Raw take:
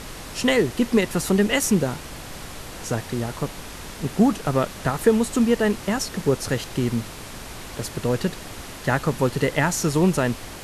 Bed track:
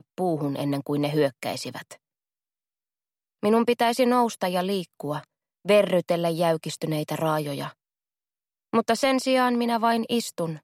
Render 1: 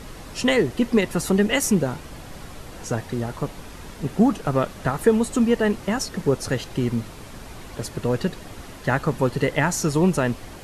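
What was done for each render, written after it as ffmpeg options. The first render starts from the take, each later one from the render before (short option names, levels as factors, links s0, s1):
-af "afftdn=nr=7:nf=-38"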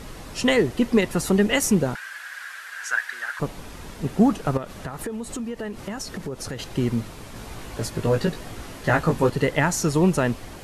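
-filter_complex "[0:a]asettb=1/sr,asplit=3[s0][s1][s2];[s0]atrim=end=1.954[s3];[s1]atrim=start=1.95:end=3.4,asetpts=PTS-STARTPTS,afade=t=in:d=0.004:c=qsin,afade=t=out:st=1.446:d=0.004:c=qsin,highpass=f=1600:t=q:w=9.5[s4];[s2]atrim=start=3.396[s5];[s3][s4]acrossfade=d=0.004:c1=hsin:c2=qsin[s6];[s6][s5]acrossfade=d=0.004:c1=qsin:c2=hsin,asettb=1/sr,asplit=3[s7][s8][s9];[s7]atrim=end=4.574[s10];[s8]atrim=start=4.57:end=6.59,asetpts=PTS-STARTPTS,afade=t=in:d=0.004:c=qsin,afade=t=out:st=2.016:d=0.004:c=qsin,acompressor=threshold=0.0398:ratio=6:attack=3.2:release=140:knee=1:detection=peak[s11];[s9]atrim=start=6.586[s12];[s10][s11]acrossfade=d=0.004:c1=hsin:c2=qsin[s13];[s13][s12]acrossfade=d=0.004:c1=qsin:c2=hsin,asettb=1/sr,asplit=3[s14][s15][s16];[s14]atrim=end=7.344[s17];[s15]atrim=start=7.34:end=9.3,asetpts=PTS-STARTPTS,afade=t=in:d=0.004:c=qsin,afade=t=out:st=1.956:d=0.004:c=qsin,asplit=2[s18][s19];[s19]adelay=18,volume=0.708[s20];[s18][s20]amix=inputs=2:normalize=0,atrim=end_sample=86436[s21];[s16]atrim=start=9.296[s22];[s17][s21]acrossfade=d=0.004:c1=hsin:c2=qsin[s23];[s23][s22]acrossfade=d=0.004:c1=qsin:c2=hsin"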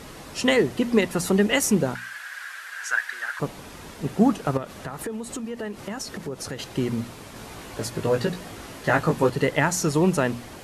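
-af "highpass=f=100:p=1,bandreject=f=60:t=h:w=6,bandreject=f=120:t=h:w=6,bandreject=f=180:t=h:w=6,bandreject=f=240:t=h:w=6"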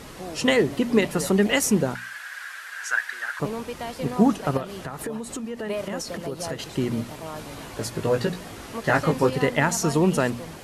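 -filter_complex "[1:a]volume=0.251[s0];[0:a][s0]amix=inputs=2:normalize=0"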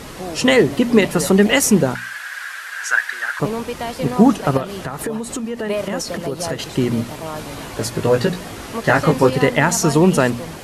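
-af "volume=2.24,alimiter=limit=0.891:level=0:latency=1"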